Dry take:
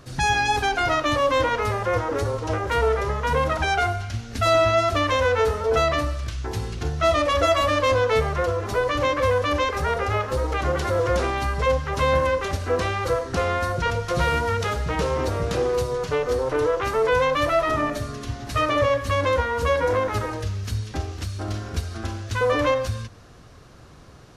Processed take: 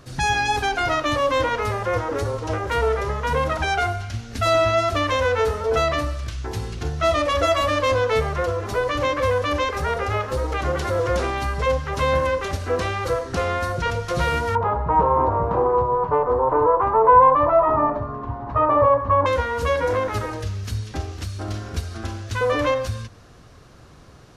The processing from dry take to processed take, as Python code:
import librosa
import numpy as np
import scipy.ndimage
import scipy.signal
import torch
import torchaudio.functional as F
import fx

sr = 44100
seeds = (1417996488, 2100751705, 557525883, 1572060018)

y = fx.lowpass_res(x, sr, hz=970.0, q=6.3, at=(14.55, 19.26))